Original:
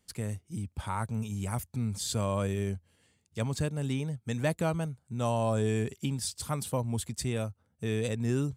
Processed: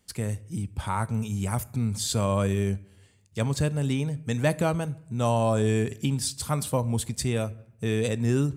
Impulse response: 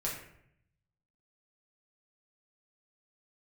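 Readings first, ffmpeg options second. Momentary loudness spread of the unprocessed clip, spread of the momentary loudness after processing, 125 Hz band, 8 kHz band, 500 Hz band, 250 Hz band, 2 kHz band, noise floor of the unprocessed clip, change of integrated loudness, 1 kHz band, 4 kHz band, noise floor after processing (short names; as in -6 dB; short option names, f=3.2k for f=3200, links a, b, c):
8 LU, 8 LU, +5.5 dB, +5.0 dB, +5.0 dB, +5.0 dB, +5.0 dB, -74 dBFS, +5.0 dB, +5.0 dB, +5.0 dB, -57 dBFS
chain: -filter_complex "[0:a]asplit=2[a][b];[1:a]atrim=start_sample=2205,adelay=15[c];[b][c]afir=irnorm=-1:irlink=0,volume=-20dB[d];[a][d]amix=inputs=2:normalize=0,volume=5dB"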